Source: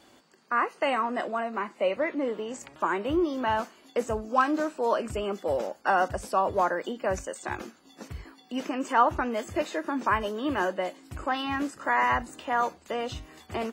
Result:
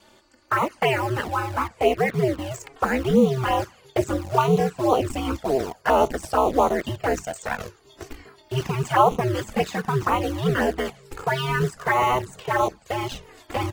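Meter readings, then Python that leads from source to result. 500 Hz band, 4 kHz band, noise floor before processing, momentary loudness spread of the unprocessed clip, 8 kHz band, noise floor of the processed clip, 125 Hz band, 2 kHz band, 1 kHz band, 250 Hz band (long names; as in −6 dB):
+6.0 dB, +6.0 dB, −58 dBFS, 11 LU, +6.5 dB, −56 dBFS, +16.0 dB, +3.0 dB, +4.0 dB, +5.5 dB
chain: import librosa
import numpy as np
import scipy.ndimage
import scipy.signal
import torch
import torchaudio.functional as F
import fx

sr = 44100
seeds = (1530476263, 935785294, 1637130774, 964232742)

p1 = fx.low_shelf_res(x, sr, hz=110.0, db=-7.5, q=1.5)
p2 = p1 * np.sin(2.0 * np.pi * 130.0 * np.arange(len(p1)) / sr)
p3 = fx.quant_dither(p2, sr, seeds[0], bits=6, dither='none')
p4 = p2 + F.gain(torch.from_numpy(p3), -8.0).numpy()
p5 = fx.env_flanger(p4, sr, rest_ms=3.5, full_db=-21.0)
y = F.gain(torch.from_numpy(p5), 8.5).numpy()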